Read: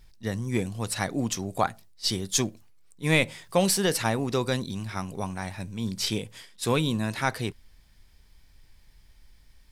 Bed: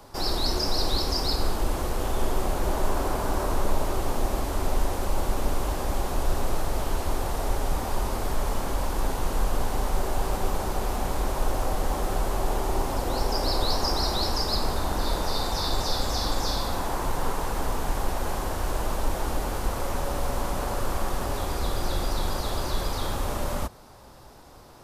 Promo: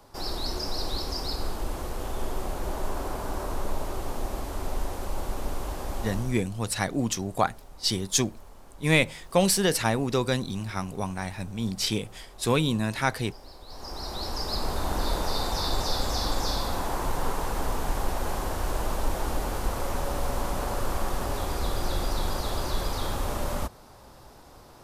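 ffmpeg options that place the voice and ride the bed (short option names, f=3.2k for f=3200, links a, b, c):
-filter_complex "[0:a]adelay=5800,volume=1dB[a];[1:a]volume=16dB,afade=t=out:st=6.1:d=0.32:silence=0.141254,afade=t=in:st=13.66:d=1.28:silence=0.0841395[b];[a][b]amix=inputs=2:normalize=0"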